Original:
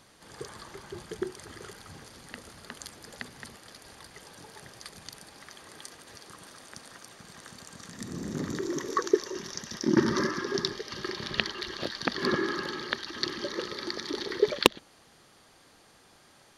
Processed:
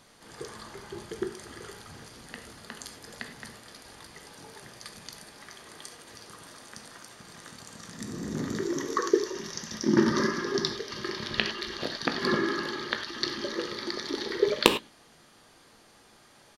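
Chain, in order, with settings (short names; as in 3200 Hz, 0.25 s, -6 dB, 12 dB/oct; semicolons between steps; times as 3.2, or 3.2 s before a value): doubler 18 ms -13 dB; on a send: reverb, pre-delay 3 ms, DRR 6 dB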